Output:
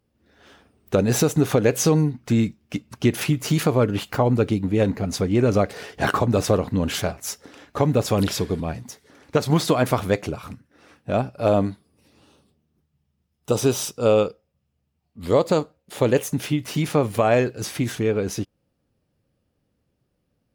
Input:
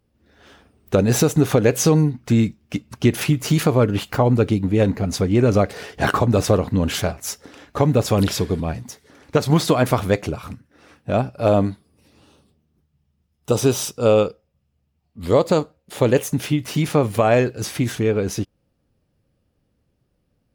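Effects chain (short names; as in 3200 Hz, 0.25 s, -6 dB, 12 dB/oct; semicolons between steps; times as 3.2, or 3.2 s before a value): low shelf 64 Hz -7.5 dB; gain -2 dB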